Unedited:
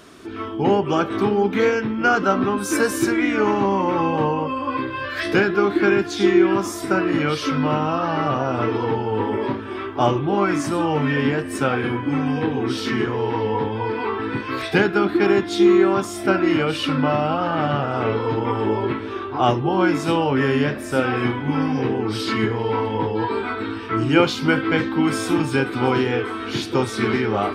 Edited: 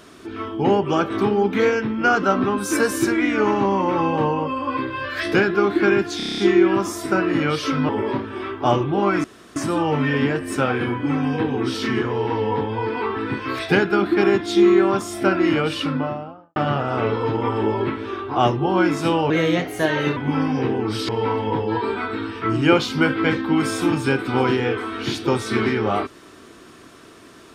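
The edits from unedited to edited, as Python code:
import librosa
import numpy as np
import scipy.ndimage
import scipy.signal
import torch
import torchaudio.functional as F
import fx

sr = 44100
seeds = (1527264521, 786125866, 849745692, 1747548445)

y = fx.studio_fade_out(x, sr, start_s=16.67, length_s=0.92)
y = fx.edit(y, sr, fx.stutter(start_s=6.17, slice_s=0.03, count=8),
    fx.cut(start_s=7.68, length_s=1.56),
    fx.insert_room_tone(at_s=10.59, length_s=0.32),
    fx.speed_span(start_s=20.33, length_s=1.04, speed=1.2),
    fx.cut(start_s=22.29, length_s=0.27), tone=tone)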